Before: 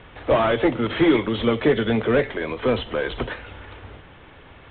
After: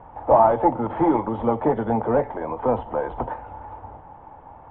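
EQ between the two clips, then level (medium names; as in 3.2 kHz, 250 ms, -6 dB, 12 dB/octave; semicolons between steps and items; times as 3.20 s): resonant low-pass 860 Hz, resonance Q 7.5; peaking EQ 400 Hz -6.5 dB 0.25 oct; -3.0 dB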